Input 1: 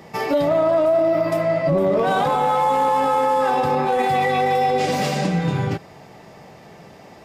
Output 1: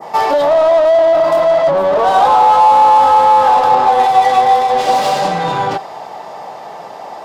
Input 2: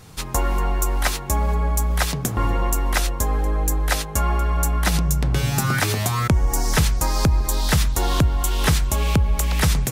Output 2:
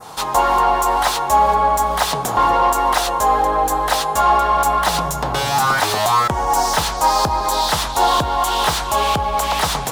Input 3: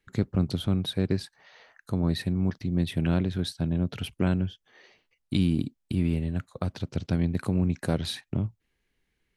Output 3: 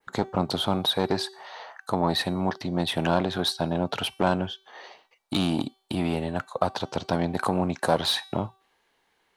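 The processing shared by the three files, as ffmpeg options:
-filter_complex "[0:a]adynamicequalizer=threshold=0.0141:dfrequency=3600:dqfactor=0.75:tfrequency=3600:tqfactor=0.75:attack=5:release=100:ratio=0.375:range=1.5:mode=boostabove:tftype=bell,asplit=2[a][b];[b]highpass=f=720:p=1,volume=22dB,asoftclip=type=tanh:threshold=-7dB[c];[a][c]amix=inputs=2:normalize=0,lowpass=f=1.3k:p=1,volume=-6dB,equalizer=f=860:w=0.91:g=14.5,acrossover=split=1100[d][e];[e]aexciter=amount=3.6:drive=5.1:freq=3.2k[f];[d][f]amix=inputs=2:normalize=0,bandreject=f=384.5:t=h:w=4,bandreject=f=769:t=h:w=4,bandreject=f=1.1535k:t=h:w=4,bandreject=f=1.538k:t=h:w=4,bandreject=f=1.9225k:t=h:w=4,bandreject=f=2.307k:t=h:w=4,bandreject=f=2.6915k:t=h:w=4,bandreject=f=3.076k:t=h:w=4,bandreject=f=3.4605k:t=h:w=4,bandreject=f=3.845k:t=h:w=4,bandreject=f=4.2295k:t=h:w=4,bandreject=f=4.614k:t=h:w=4,bandreject=f=4.9985k:t=h:w=4,bandreject=f=5.383k:t=h:w=4,bandreject=f=5.7675k:t=h:w=4,bandreject=f=6.152k:t=h:w=4,bandreject=f=6.5365k:t=h:w=4,bandreject=f=6.921k:t=h:w=4,bandreject=f=7.3055k:t=h:w=4,bandreject=f=7.69k:t=h:w=4,bandreject=f=8.0745k:t=h:w=4,bandreject=f=8.459k:t=h:w=4,bandreject=f=8.8435k:t=h:w=4,bandreject=f=9.228k:t=h:w=4,bandreject=f=9.6125k:t=h:w=4,bandreject=f=9.997k:t=h:w=4,bandreject=f=10.3815k:t=h:w=4,bandreject=f=10.766k:t=h:w=4,bandreject=f=11.1505k:t=h:w=4,bandreject=f=11.535k:t=h:w=4,bandreject=f=11.9195k:t=h:w=4,bandreject=f=12.304k:t=h:w=4,bandreject=f=12.6885k:t=h:w=4,bandreject=f=13.073k:t=h:w=4,bandreject=f=13.4575k:t=h:w=4,bandreject=f=13.842k:t=h:w=4,volume=-7dB"

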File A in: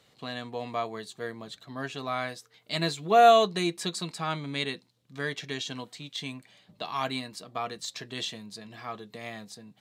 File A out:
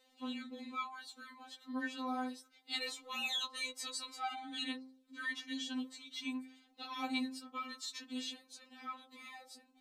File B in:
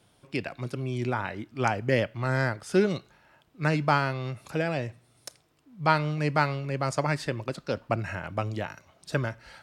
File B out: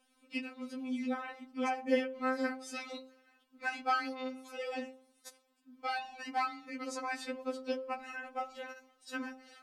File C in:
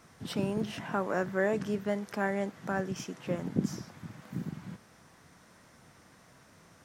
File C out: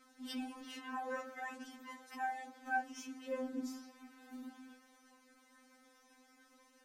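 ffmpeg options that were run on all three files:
-af "bandreject=f=52.25:t=h:w=4,bandreject=f=104.5:t=h:w=4,bandreject=f=156.75:t=h:w=4,bandreject=f=209:t=h:w=4,bandreject=f=261.25:t=h:w=4,bandreject=f=313.5:t=h:w=4,bandreject=f=365.75:t=h:w=4,bandreject=f=418:t=h:w=4,bandreject=f=470.25:t=h:w=4,bandreject=f=522.5:t=h:w=4,bandreject=f=574.75:t=h:w=4,bandreject=f=627:t=h:w=4,bandreject=f=679.25:t=h:w=4,bandreject=f=731.5:t=h:w=4,bandreject=f=783.75:t=h:w=4,bandreject=f=836:t=h:w=4,bandreject=f=888.25:t=h:w=4,bandreject=f=940.5:t=h:w=4,bandreject=f=992.75:t=h:w=4,bandreject=f=1.045k:t=h:w=4,bandreject=f=1.09725k:t=h:w=4,bandreject=f=1.1495k:t=h:w=4,bandreject=f=1.20175k:t=h:w=4,bandreject=f=1.254k:t=h:w=4,bandreject=f=1.30625k:t=h:w=4,bandreject=f=1.3585k:t=h:w=4,bandreject=f=1.41075k:t=h:w=4,bandreject=f=1.463k:t=h:w=4,bandreject=f=1.51525k:t=h:w=4,afftfilt=real='re*3.46*eq(mod(b,12),0)':imag='im*3.46*eq(mod(b,12),0)':win_size=2048:overlap=0.75,volume=-4.5dB"

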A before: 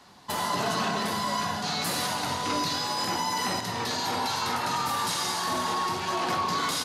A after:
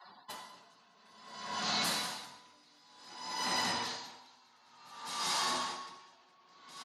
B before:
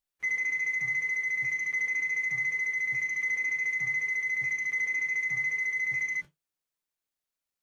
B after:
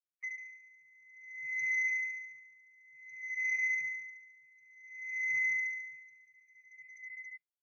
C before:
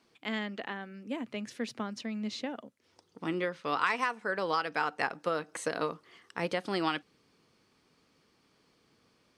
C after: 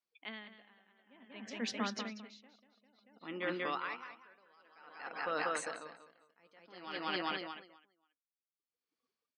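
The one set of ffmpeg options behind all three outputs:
-filter_complex "[0:a]asplit=2[a][b];[b]aecho=0:1:190|399|628.9|881.8|1160:0.631|0.398|0.251|0.158|0.1[c];[a][c]amix=inputs=2:normalize=0,adynamicequalizer=threshold=0.00398:dfrequency=240:dqfactor=2.7:tfrequency=240:tqfactor=2.7:attack=5:release=100:ratio=0.375:range=2.5:mode=boostabove:tftype=bell,asplit=2[d][e];[e]highpass=f=720:p=1,volume=11dB,asoftclip=type=tanh:threshold=-9.5dB[f];[d][f]amix=inputs=2:normalize=0,lowpass=f=4.7k:p=1,volume=-6dB,areverse,acompressor=threshold=-28dB:ratio=10,areverse,acrusher=bits=9:mode=log:mix=0:aa=0.000001,afftdn=nr=29:nf=-50,highshelf=f=3.4k:g=7,aeval=exprs='val(0)*pow(10,-32*(0.5-0.5*cos(2*PI*0.55*n/s))/20)':c=same,volume=-3dB"

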